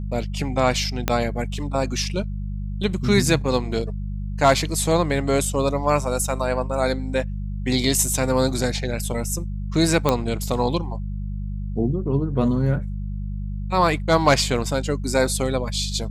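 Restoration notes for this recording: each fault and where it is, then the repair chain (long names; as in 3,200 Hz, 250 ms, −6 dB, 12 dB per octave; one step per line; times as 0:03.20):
mains hum 50 Hz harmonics 4 −28 dBFS
0:01.08: click −4 dBFS
0:10.09: click −5 dBFS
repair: click removal
hum removal 50 Hz, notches 4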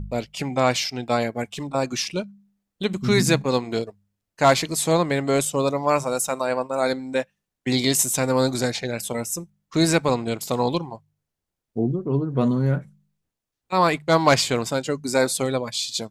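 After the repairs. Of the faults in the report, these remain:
0:01.08: click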